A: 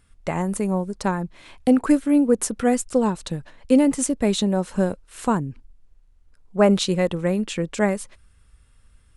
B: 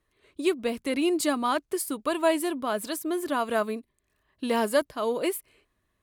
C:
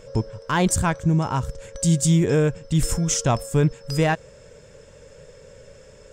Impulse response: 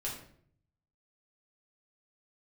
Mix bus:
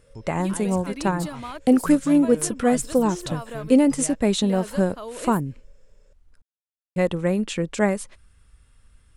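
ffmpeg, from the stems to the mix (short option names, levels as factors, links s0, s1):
-filter_complex "[0:a]volume=1,asplit=3[s0][s1][s2];[s0]atrim=end=6.42,asetpts=PTS-STARTPTS,afade=t=out:st=6.416:d=0.004:c=hsin[s3];[s1]atrim=start=6.42:end=6.96,asetpts=PTS-STARTPTS,volume=0[s4];[s2]atrim=start=6.96,asetpts=PTS-STARTPTS,afade=t=in:d=0.004:c=hsin[s5];[s3][s4][s5]concat=n=3:v=0:a=1[s6];[1:a]acompressor=threshold=0.0562:ratio=6,volume=0.501[s7];[2:a]volume=0.133[s8];[s6][s7][s8]amix=inputs=3:normalize=0"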